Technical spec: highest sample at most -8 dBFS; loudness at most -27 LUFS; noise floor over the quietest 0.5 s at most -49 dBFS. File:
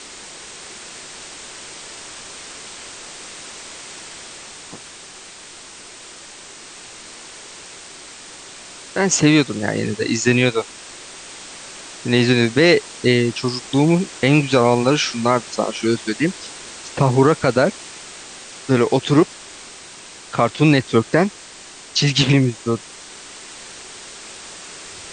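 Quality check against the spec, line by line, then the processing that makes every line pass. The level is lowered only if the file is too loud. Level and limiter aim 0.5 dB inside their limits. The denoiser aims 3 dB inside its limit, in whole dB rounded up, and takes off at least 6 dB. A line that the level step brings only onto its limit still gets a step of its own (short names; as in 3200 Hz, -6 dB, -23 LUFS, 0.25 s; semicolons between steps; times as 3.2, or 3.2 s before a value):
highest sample -2.5 dBFS: fail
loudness -17.5 LUFS: fail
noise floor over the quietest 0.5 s -40 dBFS: fail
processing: gain -10 dB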